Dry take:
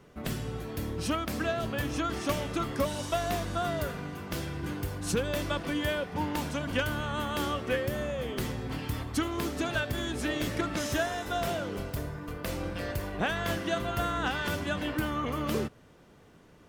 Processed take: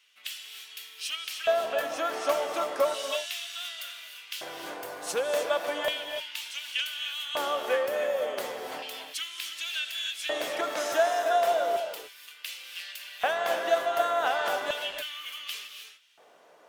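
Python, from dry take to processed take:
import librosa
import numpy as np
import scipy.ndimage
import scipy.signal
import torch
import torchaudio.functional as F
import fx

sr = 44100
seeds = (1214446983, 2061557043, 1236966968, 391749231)

y = fx.filter_lfo_highpass(x, sr, shape='square', hz=0.34, low_hz=630.0, high_hz=2900.0, q=2.5)
y = fx.rev_gated(y, sr, seeds[0], gate_ms=330, shape='rising', drr_db=6.0)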